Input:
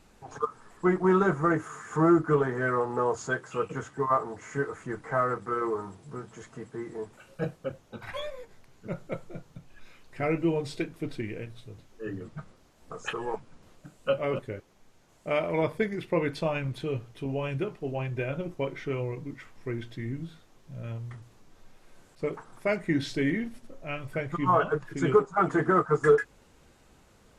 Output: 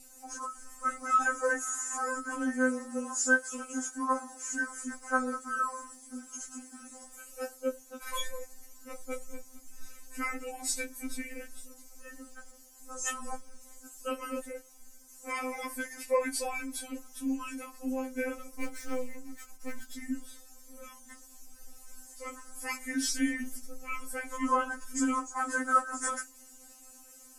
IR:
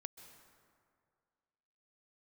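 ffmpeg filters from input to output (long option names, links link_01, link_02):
-filter_complex "[0:a]asettb=1/sr,asplit=3[link_01][link_02][link_03];[link_01]atrim=end=18.494[link_04];[link_02]atrim=start=18.49:end=19.93,asetpts=PTS-STARTPTS,afade=type=in:duration=0.004:curve=qsin,afade=type=out:start_time=1.436:duration=0.004:curve=qsin,aeval=exprs='if(lt(val(0),0),0.251*val(0),val(0))':channel_layout=same[link_05];[link_03]atrim=start=19.926[link_06];[link_04][link_05]acrossfade=duration=0.004:curve1=hsin:curve2=qsin[link_07];[link_07][link_06]acrossfade=duration=0.004:curve1=qsin:curve2=hsin,aexciter=amount=9.8:drive=4.8:freq=5400,afftfilt=real='re*3.46*eq(mod(b,12),0)':imag='im*3.46*eq(mod(b,12),0)':win_size=2048:overlap=0.75"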